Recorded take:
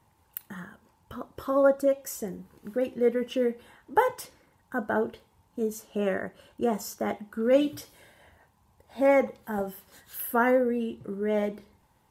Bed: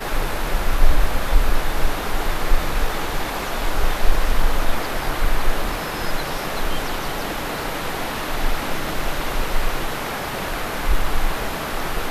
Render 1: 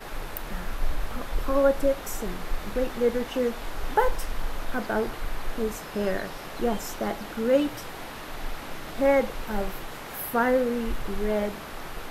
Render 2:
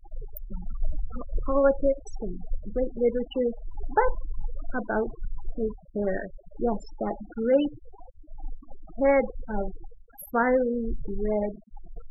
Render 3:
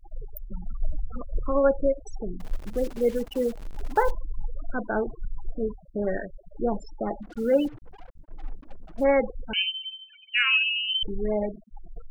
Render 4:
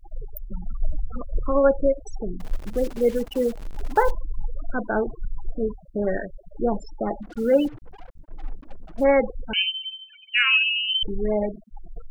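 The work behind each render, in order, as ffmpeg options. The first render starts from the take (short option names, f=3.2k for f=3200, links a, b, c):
-filter_complex "[1:a]volume=-12.5dB[a];[0:a][a]amix=inputs=2:normalize=0"
-af "afftfilt=real='re*gte(hypot(re,im),0.0562)':imag='im*gte(hypot(re,im),0.0562)':win_size=1024:overlap=0.75"
-filter_complex "[0:a]asettb=1/sr,asplit=3[a][b][c];[a]atrim=end=2.404[d];[b]atrim=start=2.4:end=4.11,asetpts=PTS-STARTPTS,afade=t=in:d=0.004:c=qsin,afade=t=out:st=1.706:d=0.004:c=qsin,acrusher=bits=8:dc=4:mix=0:aa=0.000001[e];[c]atrim=start=4.106[f];[d][e]acrossfade=d=0.004:c1=hsin:c2=qsin[g];[g][f]acrossfade=d=0.004:c1=qsin:c2=hsin,asplit=3[h][i][j];[h]afade=t=out:st=7.22:d=0.02[k];[i]acrusher=bits=7:mix=0:aa=0.5,afade=t=in:st=7.22:d=0.02,afade=t=out:st=9.03:d=0.02[l];[j]afade=t=in:st=9.03:d=0.02[m];[k][l][m]amix=inputs=3:normalize=0,asettb=1/sr,asplit=3[n][o][p];[n]atrim=end=9.534[q];[o]atrim=start=9.53:end=11.03,asetpts=PTS-STARTPTS,afade=t=in:d=0.004:c=qsin,afade=t=out:st=1.496:d=0.004:c=qsin,lowpass=f=2.6k:t=q:w=0.5098,lowpass=f=2.6k:t=q:w=0.6013,lowpass=f=2.6k:t=q:w=0.9,lowpass=f=2.6k:t=q:w=2.563,afreqshift=-3100[r];[p]atrim=start=11.026[s];[q][r]acrossfade=d=0.004:c1=hsin:c2=qsin[t];[t][s]acrossfade=d=0.004:c1=qsin:c2=hsin"
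-af "volume=3dB"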